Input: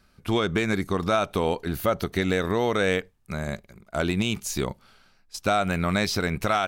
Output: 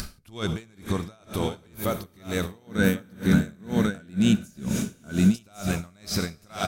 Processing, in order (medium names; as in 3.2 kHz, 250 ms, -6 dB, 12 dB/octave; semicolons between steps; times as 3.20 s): tone controls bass +7 dB, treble +11 dB; delay 1093 ms -6 dB; algorithmic reverb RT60 4.5 s, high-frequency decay 1×, pre-delay 25 ms, DRR 7.5 dB; compression, threshold -25 dBFS, peak gain reduction 10 dB; 2.67–5.36 s: small resonant body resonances 210/1500 Hz, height 13 dB, ringing for 30 ms; upward compressor, threshold -23 dBFS; logarithmic tremolo 2.1 Hz, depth 32 dB; trim +4 dB